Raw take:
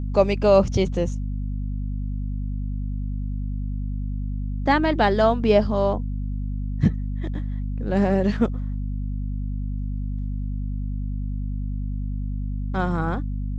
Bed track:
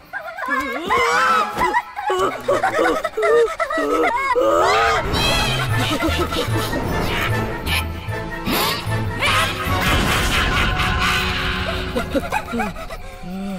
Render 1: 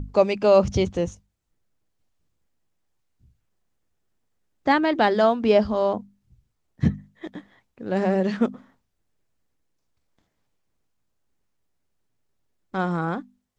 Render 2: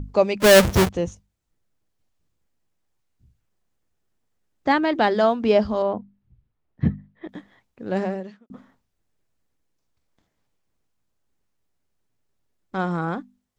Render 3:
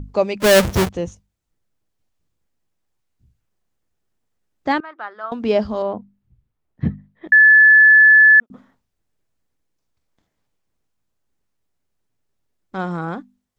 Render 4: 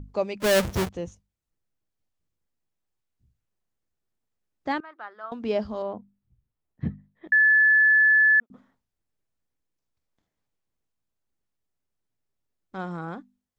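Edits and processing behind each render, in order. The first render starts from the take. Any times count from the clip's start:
mains-hum notches 50/100/150/200/250 Hz
0:00.40–0:00.89: each half-wave held at its own peak; 0:05.82–0:07.29: high-frequency loss of the air 330 metres; 0:07.96–0:08.50: fade out quadratic
0:04.80–0:05.32: resonant band-pass 1,300 Hz, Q 4.8; 0:07.32–0:08.40: beep over 1,730 Hz −6 dBFS
level −8.5 dB

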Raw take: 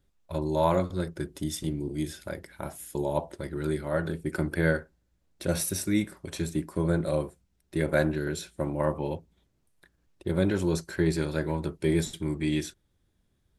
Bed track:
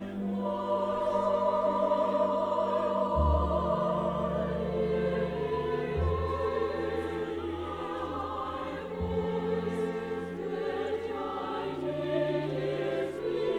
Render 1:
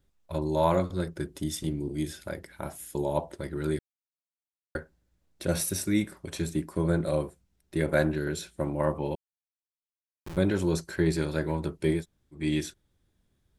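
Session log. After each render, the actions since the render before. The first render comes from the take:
0:03.79–0:04.75: silence
0:09.15–0:10.37: comparator with hysteresis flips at −26.5 dBFS
0:11.98–0:12.39: fill with room tone, crossfade 0.16 s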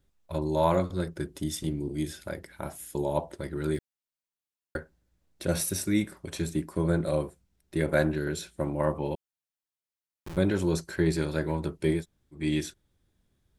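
0:03.74–0:04.77: one scale factor per block 7 bits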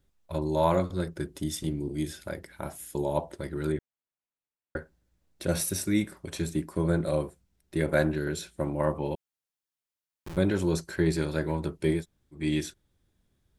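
0:03.72–0:04.77: moving average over 9 samples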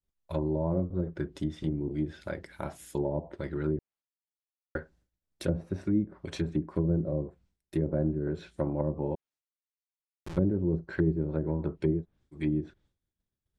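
treble cut that deepens with the level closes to 380 Hz, closed at −23.5 dBFS
downward expander −59 dBFS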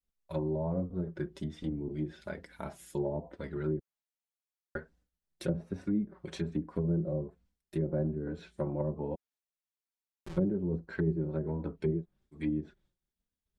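flanger 1.2 Hz, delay 3.9 ms, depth 1.8 ms, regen −17%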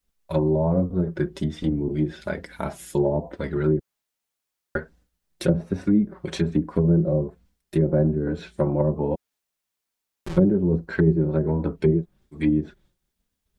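level +11.5 dB

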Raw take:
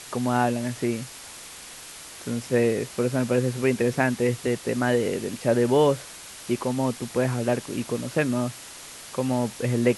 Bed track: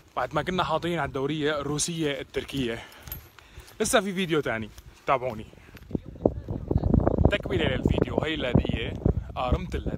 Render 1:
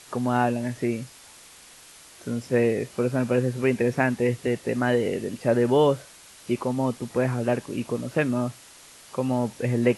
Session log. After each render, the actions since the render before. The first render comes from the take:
noise reduction from a noise print 7 dB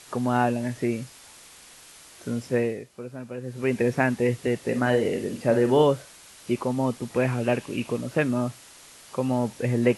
0:02.46–0:03.80: duck −13 dB, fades 0.39 s
0:04.57–0:05.83: flutter between parallel walls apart 8.1 metres, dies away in 0.28 s
0:07.14–0:07.97: parametric band 2,600 Hz +7.5 dB 0.53 octaves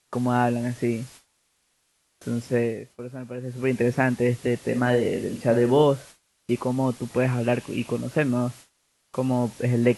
noise gate with hold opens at −35 dBFS
low-shelf EQ 180 Hz +4 dB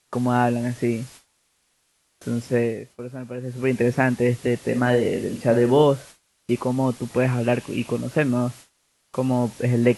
level +2 dB

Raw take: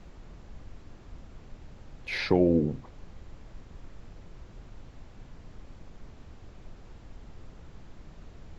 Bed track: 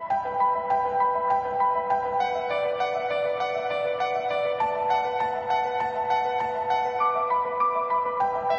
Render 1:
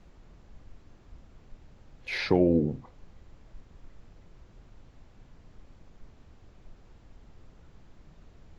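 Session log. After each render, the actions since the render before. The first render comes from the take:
noise reduction from a noise print 6 dB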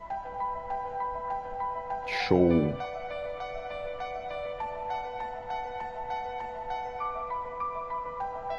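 mix in bed track −10 dB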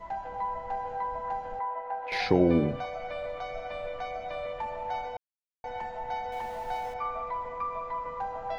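0:01.59–0:02.12: three-way crossover with the lows and the highs turned down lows −20 dB, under 320 Hz, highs −18 dB, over 2,600 Hz
0:05.17–0:05.64: silence
0:06.32–0:06.94: converter with a step at zero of −45.5 dBFS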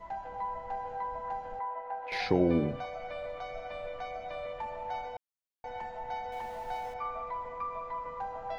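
level −3.5 dB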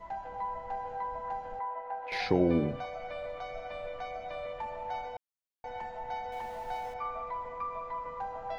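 no processing that can be heard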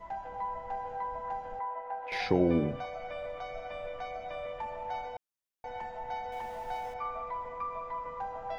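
notch filter 4,200 Hz, Q 14

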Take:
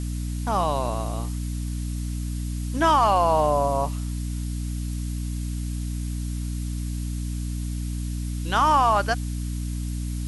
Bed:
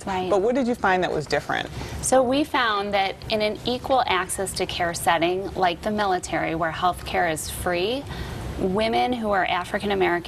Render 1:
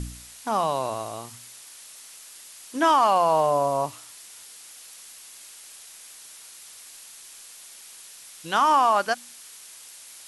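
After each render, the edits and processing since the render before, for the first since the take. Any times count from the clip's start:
hum removal 60 Hz, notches 5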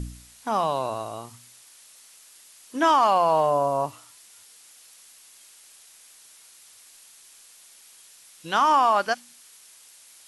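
noise reduction from a noise print 6 dB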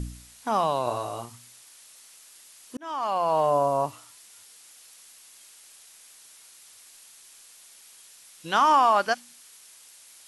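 0:00.84–0:01.25: double-tracking delay 25 ms −4.5 dB
0:02.77–0:03.55: fade in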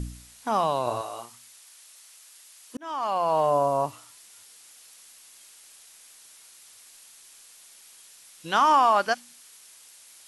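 0:01.01–0:02.75: high-pass filter 640 Hz 6 dB per octave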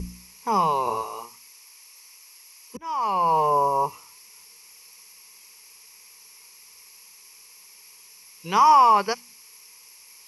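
EQ curve with evenly spaced ripples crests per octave 0.82, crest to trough 15 dB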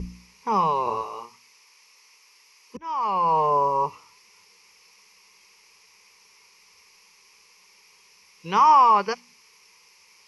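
Bessel low-pass filter 4,000 Hz, order 2
notch filter 690 Hz, Q 13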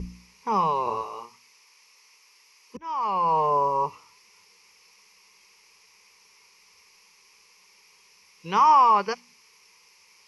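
level −1.5 dB

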